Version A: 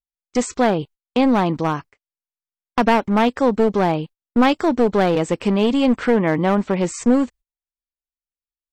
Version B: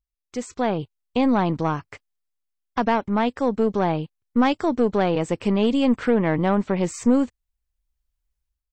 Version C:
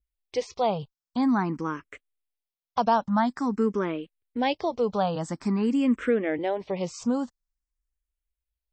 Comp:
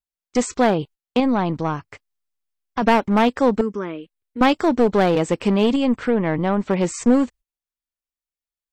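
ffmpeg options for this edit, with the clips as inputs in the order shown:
-filter_complex "[1:a]asplit=2[s0][s1];[0:a]asplit=4[s2][s3][s4][s5];[s2]atrim=end=1.202[s6];[s0]atrim=start=1.198:end=2.822[s7];[s3]atrim=start=2.818:end=3.612[s8];[2:a]atrim=start=3.608:end=4.412[s9];[s4]atrim=start=4.408:end=5.762[s10];[s1]atrim=start=5.758:end=6.662[s11];[s5]atrim=start=6.658[s12];[s6][s7]acrossfade=d=0.004:c1=hsin:c2=hsin[s13];[s13][s8]acrossfade=d=0.004:c1=hsin:c2=hsin[s14];[s14][s9]acrossfade=d=0.004:c1=hsin:c2=hsin[s15];[s15][s10]acrossfade=d=0.004:c1=hsin:c2=hsin[s16];[s16][s11]acrossfade=d=0.004:c1=hsin:c2=hsin[s17];[s17][s12]acrossfade=d=0.004:c1=hsin:c2=hsin"

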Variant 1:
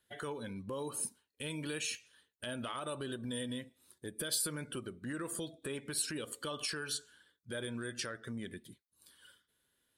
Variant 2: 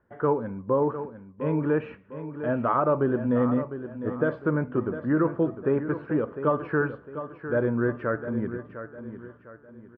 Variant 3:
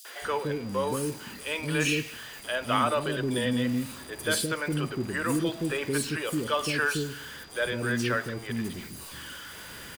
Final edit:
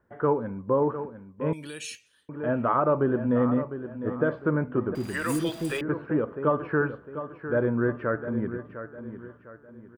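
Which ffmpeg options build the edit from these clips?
-filter_complex "[1:a]asplit=3[s0][s1][s2];[s0]atrim=end=1.532[s3];[0:a]atrim=start=1.528:end=2.292[s4];[s1]atrim=start=2.288:end=4.952[s5];[2:a]atrim=start=4.948:end=5.812[s6];[s2]atrim=start=5.808[s7];[s3][s4]acrossfade=d=0.004:c1=hsin:c2=hsin[s8];[s8][s5]acrossfade=d=0.004:c1=hsin:c2=hsin[s9];[s9][s6]acrossfade=d=0.004:c1=hsin:c2=hsin[s10];[s10][s7]acrossfade=d=0.004:c1=hsin:c2=hsin"

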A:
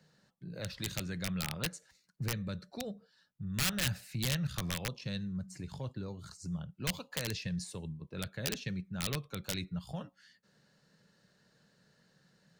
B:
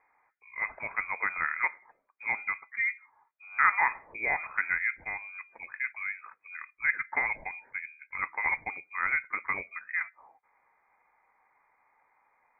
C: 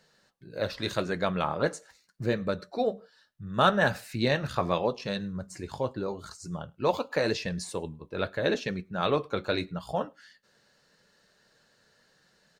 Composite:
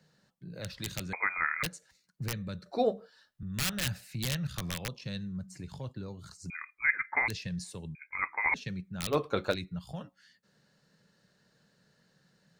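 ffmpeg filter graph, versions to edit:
-filter_complex "[1:a]asplit=3[s0][s1][s2];[2:a]asplit=2[s3][s4];[0:a]asplit=6[s5][s6][s7][s8][s9][s10];[s5]atrim=end=1.132[s11];[s0]atrim=start=1.128:end=1.632[s12];[s6]atrim=start=1.628:end=2.662[s13];[s3]atrim=start=2.658:end=3.432[s14];[s7]atrim=start=3.428:end=6.502[s15];[s1]atrim=start=6.498:end=7.282[s16];[s8]atrim=start=7.278:end=7.952[s17];[s2]atrim=start=7.948:end=8.542[s18];[s9]atrim=start=8.538:end=9.16[s19];[s4]atrim=start=9.1:end=9.56[s20];[s10]atrim=start=9.5[s21];[s11][s12]acrossfade=d=0.004:c1=hsin:c2=hsin[s22];[s22][s13]acrossfade=d=0.004:c1=hsin:c2=hsin[s23];[s23][s14]acrossfade=d=0.004:c1=hsin:c2=hsin[s24];[s24][s15]acrossfade=d=0.004:c1=hsin:c2=hsin[s25];[s25][s16]acrossfade=d=0.004:c1=hsin:c2=hsin[s26];[s26][s17]acrossfade=d=0.004:c1=hsin:c2=hsin[s27];[s27][s18]acrossfade=d=0.004:c1=hsin:c2=hsin[s28];[s28][s19]acrossfade=d=0.004:c1=hsin:c2=hsin[s29];[s29][s20]acrossfade=d=0.06:c1=tri:c2=tri[s30];[s30][s21]acrossfade=d=0.06:c1=tri:c2=tri"

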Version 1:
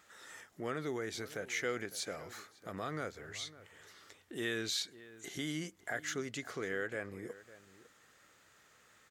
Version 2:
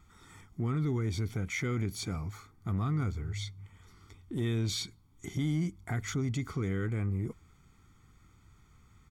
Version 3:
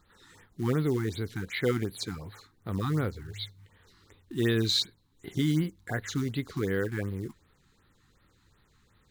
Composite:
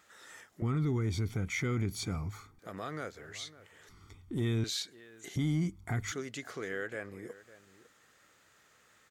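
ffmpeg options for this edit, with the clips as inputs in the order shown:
-filter_complex "[1:a]asplit=3[s0][s1][s2];[0:a]asplit=4[s3][s4][s5][s6];[s3]atrim=end=0.622[s7];[s0]atrim=start=0.618:end=2.592[s8];[s4]atrim=start=2.588:end=3.892[s9];[s1]atrim=start=3.888:end=4.642[s10];[s5]atrim=start=4.638:end=5.362[s11];[s2]atrim=start=5.358:end=6.122[s12];[s6]atrim=start=6.118[s13];[s7][s8]acrossfade=d=0.004:c1=hsin:c2=hsin[s14];[s14][s9]acrossfade=d=0.004:c1=hsin:c2=hsin[s15];[s15][s10]acrossfade=d=0.004:c1=hsin:c2=hsin[s16];[s16][s11]acrossfade=d=0.004:c1=hsin:c2=hsin[s17];[s17][s12]acrossfade=d=0.004:c1=hsin:c2=hsin[s18];[s18][s13]acrossfade=d=0.004:c1=hsin:c2=hsin"

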